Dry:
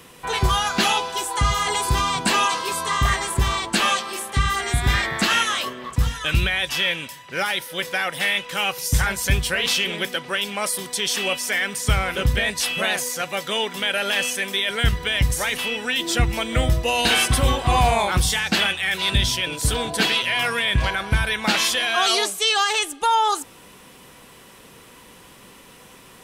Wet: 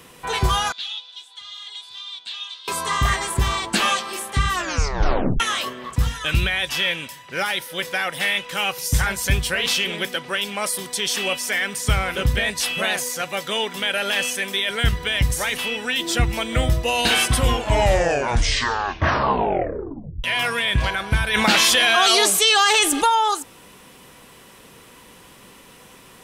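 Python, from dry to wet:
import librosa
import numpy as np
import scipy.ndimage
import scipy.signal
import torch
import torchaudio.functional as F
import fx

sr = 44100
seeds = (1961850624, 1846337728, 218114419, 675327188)

y = fx.bandpass_q(x, sr, hz=3600.0, q=8.2, at=(0.72, 2.68))
y = fx.env_flatten(y, sr, amount_pct=70, at=(21.33, 23.08), fade=0.02)
y = fx.edit(y, sr, fx.tape_stop(start_s=4.5, length_s=0.9),
    fx.tape_stop(start_s=17.31, length_s=2.93), tone=tone)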